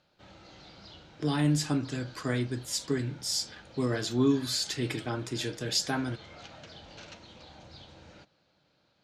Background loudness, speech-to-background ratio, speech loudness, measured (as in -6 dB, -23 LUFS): -50.0 LUFS, 19.5 dB, -30.5 LUFS